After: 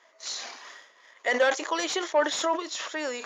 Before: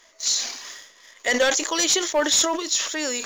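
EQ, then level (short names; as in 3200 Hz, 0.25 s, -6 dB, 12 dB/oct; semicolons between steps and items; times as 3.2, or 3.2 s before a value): band-pass 890 Hz, Q 0.7; 0.0 dB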